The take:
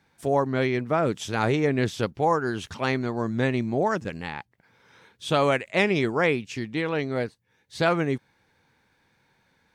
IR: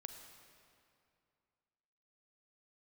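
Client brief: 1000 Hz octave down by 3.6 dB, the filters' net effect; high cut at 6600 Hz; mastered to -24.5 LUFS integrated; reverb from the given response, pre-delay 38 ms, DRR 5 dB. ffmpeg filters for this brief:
-filter_complex "[0:a]lowpass=6.6k,equalizer=f=1k:t=o:g=-5,asplit=2[a][b];[1:a]atrim=start_sample=2205,adelay=38[c];[b][c]afir=irnorm=-1:irlink=0,volume=-0.5dB[d];[a][d]amix=inputs=2:normalize=0,volume=1dB"

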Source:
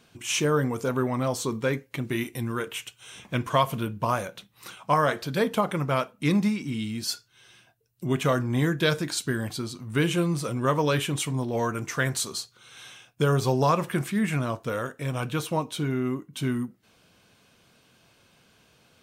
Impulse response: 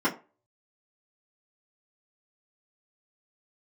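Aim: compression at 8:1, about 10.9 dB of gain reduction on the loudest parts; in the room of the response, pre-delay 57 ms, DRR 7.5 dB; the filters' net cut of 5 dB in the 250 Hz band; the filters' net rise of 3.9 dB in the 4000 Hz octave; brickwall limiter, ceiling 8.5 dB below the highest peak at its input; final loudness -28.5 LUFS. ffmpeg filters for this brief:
-filter_complex "[0:a]equalizer=f=250:t=o:g=-7,equalizer=f=4k:t=o:g=5,acompressor=threshold=-29dB:ratio=8,alimiter=level_in=2dB:limit=-24dB:level=0:latency=1,volume=-2dB,asplit=2[a][b];[1:a]atrim=start_sample=2205,adelay=57[c];[b][c]afir=irnorm=-1:irlink=0,volume=-20dB[d];[a][d]amix=inputs=2:normalize=0,volume=6.5dB"

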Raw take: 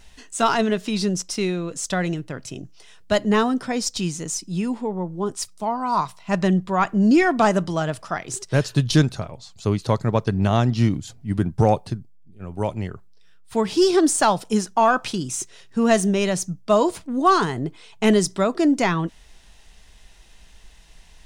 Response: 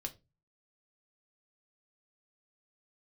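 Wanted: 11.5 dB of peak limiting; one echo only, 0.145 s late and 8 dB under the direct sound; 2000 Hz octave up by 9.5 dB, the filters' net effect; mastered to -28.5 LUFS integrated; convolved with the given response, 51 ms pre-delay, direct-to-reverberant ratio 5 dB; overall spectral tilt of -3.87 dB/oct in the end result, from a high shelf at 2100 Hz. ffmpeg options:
-filter_complex "[0:a]equalizer=f=2k:t=o:g=8,highshelf=f=2.1k:g=7.5,alimiter=limit=-11.5dB:level=0:latency=1,aecho=1:1:145:0.398,asplit=2[a][b];[1:a]atrim=start_sample=2205,adelay=51[c];[b][c]afir=irnorm=-1:irlink=0,volume=-3.5dB[d];[a][d]amix=inputs=2:normalize=0,volume=-8dB"

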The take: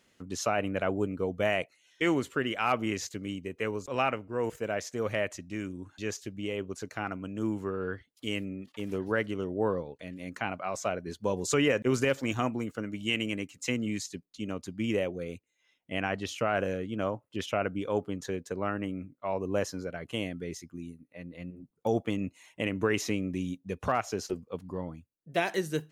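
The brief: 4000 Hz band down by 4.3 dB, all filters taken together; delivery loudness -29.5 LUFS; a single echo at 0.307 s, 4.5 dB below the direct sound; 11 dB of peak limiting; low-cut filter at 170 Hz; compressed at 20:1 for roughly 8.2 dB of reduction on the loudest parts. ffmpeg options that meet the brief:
-af "highpass=170,equalizer=f=4k:t=o:g=-7,acompressor=threshold=-30dB:ratio=20,alimiter=level_in=5dB:limit=-24dB:level=0:latency=1,volume=-5dB,aecho=1:1:307:0.596,volume=10dB"

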